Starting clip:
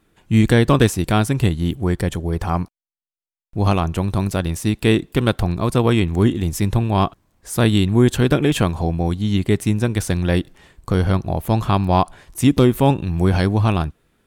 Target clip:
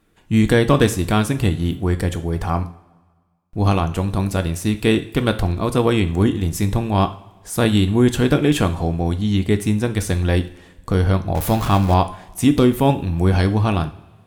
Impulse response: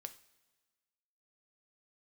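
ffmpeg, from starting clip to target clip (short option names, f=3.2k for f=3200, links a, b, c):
-filter_complex "[0:a]asettb=1/sr,asplit=3[a][b][c];[a]atrim=end=11.354[d];[b]atrim=start=11.35:end=11.94,asetpts=PTS-STARTPTS,afade=t=in:d=0.004:c=qsin,afade=t=out:st=0.586:d=0.004:c=qsin,aeval=exprs='val(0)+0.5*0.075*sgn(val(0))':c=same[e];[c]atrim=start=11.936[f];[d][e]acrossfade=d=0.004:c1=hsin:c2=qsin[g];[g][f]acrossfade=d=0.004:c1=qsin:c2=hsin[h];[1:a]atrim=start_sample=2205[i];[h][i]afir=irnorm=-1:irlink=0,volume=4.5dB"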